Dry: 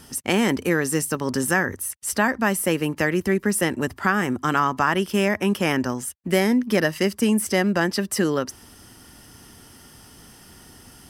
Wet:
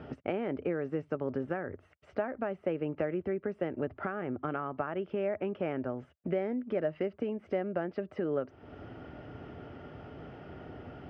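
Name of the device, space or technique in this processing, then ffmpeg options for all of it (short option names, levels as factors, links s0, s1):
bass amplifier: -af "acompressor=threshold=0.0126:ratio=4,highpass=77,equalizer=f=210:t=q:w=4:g=-7,equalizer=f=430:t=q:w=4:g=3,equalizer=f=620:t=q:w=4:g=8,equalizer=f=1000:t=q:w=4:g=-10,equalizer=f=1800:t=q:w=4:g=-10,lowpass=f=2100:w=0.5412,lowpass=f=2100:w=1.3066,volume=1.78"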